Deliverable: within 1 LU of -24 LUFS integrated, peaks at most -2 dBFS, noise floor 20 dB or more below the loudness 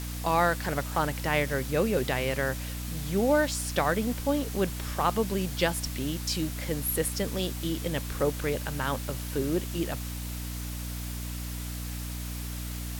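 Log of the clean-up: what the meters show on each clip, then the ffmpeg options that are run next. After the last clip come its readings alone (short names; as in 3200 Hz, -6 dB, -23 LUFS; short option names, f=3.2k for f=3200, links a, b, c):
hum 60 Hz; harmonics up to 300 Hz; hum level -33 dBFS; noise floor -36 dBFS; noise floor target -50 dBFS; loudness -29.5 LUFS; peak -11.0 dBFS; loudness target -24.0 LUFS
-> -af "bandreject=f=60:t=h:w=4,bandreject=f=120:t=h:w=4,bandreject=f=180:t=h:w=4,bandreject=f=240:t=h:w=4,bandreject=f=300:t=h:w=4"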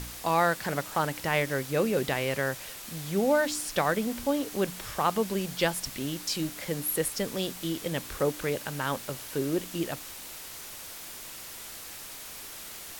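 hum none; noise floor -43 dBFS; noise floor target -51 dBFS
-> -af "afftdn=nr=8:nf=-43"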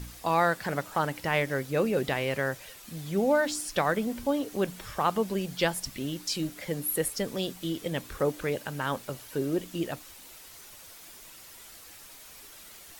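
noise floor -49 dBFS; noise floor target -50 dBFS
-> -af "afftdn=nr=6:nf=-49"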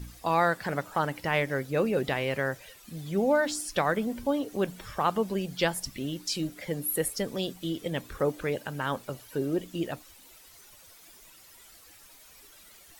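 noise floor -54 dBFS; loudness -30.0 LUFS; peak -11.0 dBFS; loudness target -24.0 LUFS
-> -af "volume=6dB"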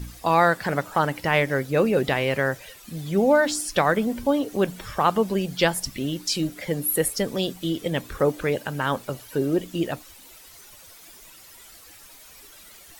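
loudness -24.0 LUFS; peak -5.0 dBFS; noise floor -48 dBFS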